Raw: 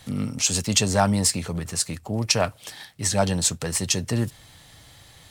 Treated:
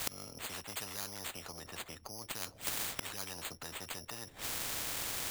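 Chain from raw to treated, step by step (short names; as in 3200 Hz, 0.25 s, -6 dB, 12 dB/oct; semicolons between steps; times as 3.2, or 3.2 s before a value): tilt -3.5 dB/oct; careless resampling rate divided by 8×, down none, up hold; dynamic EQ 1400 Hz, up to -5 dB, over -36 dBFS, Q 0.76; flipped gate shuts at -27 dBFS, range -33 dB; spectral compressor 10:1; gain +10.5 dB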